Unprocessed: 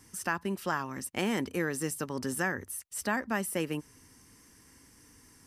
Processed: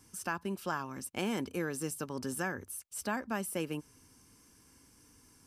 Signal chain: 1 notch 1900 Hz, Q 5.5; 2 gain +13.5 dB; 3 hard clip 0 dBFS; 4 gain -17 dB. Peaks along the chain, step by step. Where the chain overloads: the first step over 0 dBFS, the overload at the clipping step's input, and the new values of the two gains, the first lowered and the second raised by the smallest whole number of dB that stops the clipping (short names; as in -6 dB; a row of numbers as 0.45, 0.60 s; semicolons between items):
-17.0, -3.5, -3.5, -20.5 dBFS; no overload